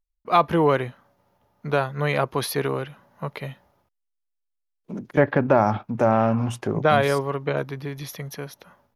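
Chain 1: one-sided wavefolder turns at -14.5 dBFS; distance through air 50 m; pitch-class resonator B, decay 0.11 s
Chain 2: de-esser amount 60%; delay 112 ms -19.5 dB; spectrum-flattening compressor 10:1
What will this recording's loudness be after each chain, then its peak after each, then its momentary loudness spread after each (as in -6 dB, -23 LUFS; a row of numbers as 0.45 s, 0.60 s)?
-35.0 LUFS, -27.0 LUFS; -17.5 dBFS, -4.5 dBFS; 15 LU, 12 LU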